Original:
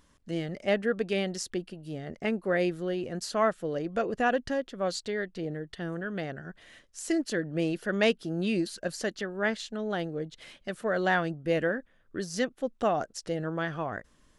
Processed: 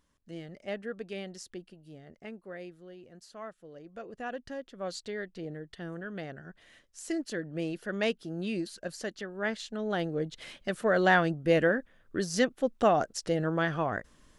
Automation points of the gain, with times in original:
1.71 s -10 dB
2.75 s -17.5 dB
3.66 s -17.5 dB
5.03 s -5 dB
9.29 s -5 dB
10.26 s +3 dB

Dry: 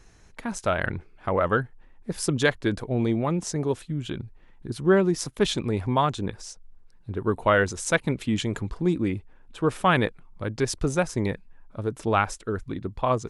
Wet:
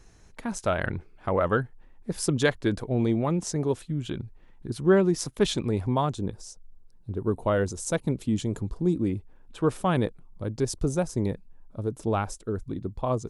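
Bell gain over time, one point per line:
bell 2000 Hz 2.1 oct
5.61 s -3.5 dB
6.26 s -13.5 dB
8.97 s -13.5 dB
9.63 s -2 dB
9.86 s -12.5 dB

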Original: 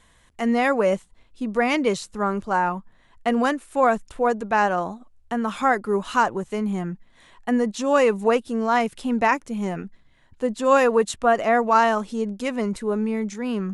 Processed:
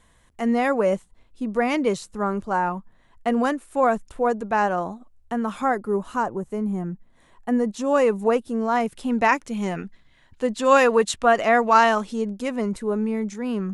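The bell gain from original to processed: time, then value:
bell 3400 Hz 2.7 oct
5.41 s -4.5 dB
6.12 s -14 dB
6.78 s -14 dB
7.83 s -6 dB
8.82 s -6 dB
9.43 s +4.5 dB
11.92 s +4.5 dB
12.42 s -3.5 dB

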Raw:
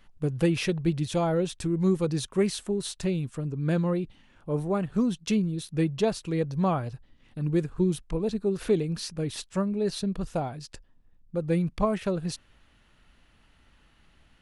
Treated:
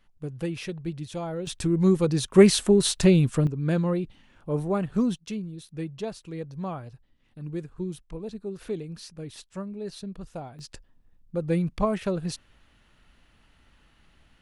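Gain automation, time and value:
-7 dB
from 1.47 s +3.5 dB
from 2.34 s +10 dB
from 3.47 s +1 dB
from 5.16 s -8 dB
from 10.59 s +0.5 dB

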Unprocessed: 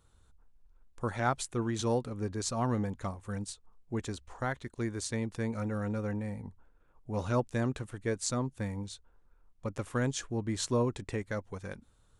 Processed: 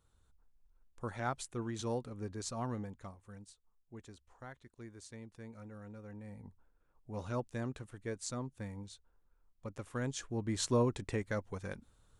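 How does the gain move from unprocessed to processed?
2.57 s -7 dB
3.46 s -16 dB
6.05 s -16 dB
6.46 s -8 dB
9.88 s -8 dB
10.65 s -1 dB

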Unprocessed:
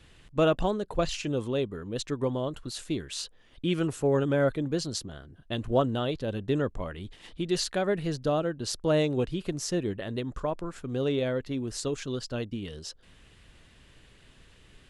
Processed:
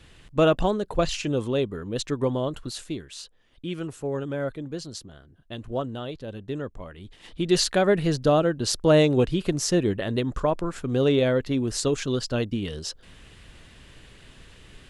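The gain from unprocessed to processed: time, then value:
2.65 s +4 dB
3.11 s -4.5 dB
6.95 s -4.5 dB
7.53 s +7 dB

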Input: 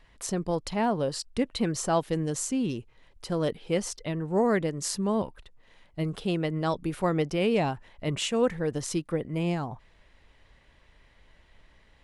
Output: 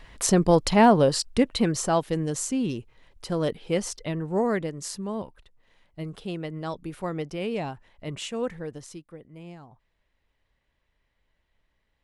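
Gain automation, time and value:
0.86 s +10 dB
2.01 s +1.5 dB
4.16 s +1.5 dB
5.06 s -5 dB
8.58 s -5 dB
9.09 s -15 dB

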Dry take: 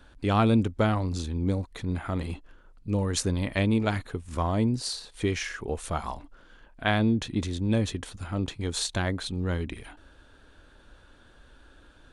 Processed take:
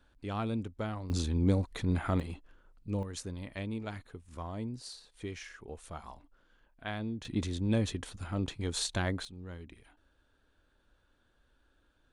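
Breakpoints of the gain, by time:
-12.5 dB
from 1.1 s 0 dB
from 2.2 s -7 dB
from 3.03 s -13.5 dB
from 7.25 s -4 dB
from 9.25 s -16 dB

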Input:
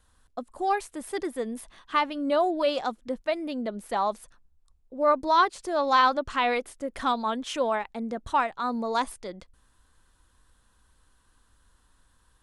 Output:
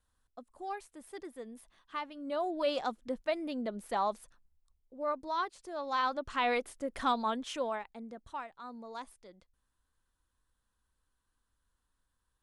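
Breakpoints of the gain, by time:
2.16 s -14 dB
2.74 s -5 dB
4.05 s -5 dB
5.22 s -13 dB
5.85 s -13 dB
6.55 s -4 dB
7.26 s -4 dB
8.4 s -17 dB

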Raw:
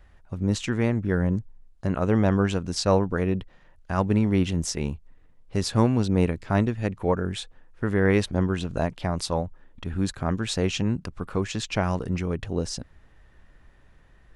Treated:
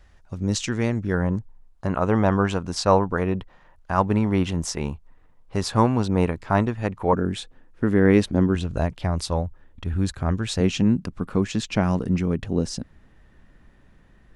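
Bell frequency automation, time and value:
bell +8 dB 1.2 oct
5800 Hz
from 1.14 s 980 Hz
from 7.13 s 260 Hz
from 8.55 s 71 Hz
from 10.6 s 220 Hz

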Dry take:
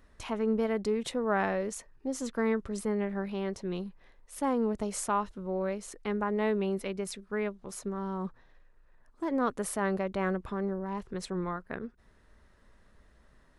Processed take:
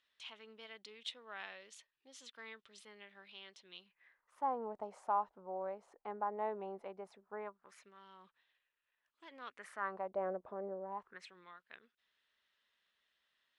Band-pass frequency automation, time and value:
band-pass, Q 3.3
3.78 s 3300 Hz
4.51 s 800 Hz
7.4 s 800 Hz
7.91 s 3000 Hz
9.44 s 3000 Hz
10.16 s 630 Hz
10.89 s 630 Hz
11.33 s 3200 Hz

